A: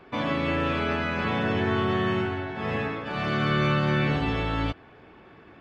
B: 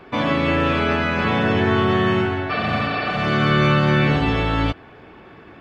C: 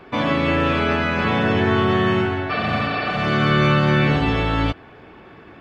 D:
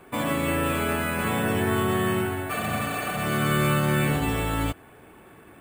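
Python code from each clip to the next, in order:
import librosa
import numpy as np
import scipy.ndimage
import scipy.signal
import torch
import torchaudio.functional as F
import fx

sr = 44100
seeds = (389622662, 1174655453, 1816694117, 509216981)

y1 = fx.spec_repair(x, sr, seeds[0], start_s=2.53, length_s=0.62, low_hz=300.0, high_hz=5500.0, source='after')
y1 = y1 * librosa.db_to_amplitude(7.0)
y2 = y1
y3 = np.repeat(y2[::4], 4)[:len(y2)]
y3 = y3 * librosa.db_to_amplitude(-6.0)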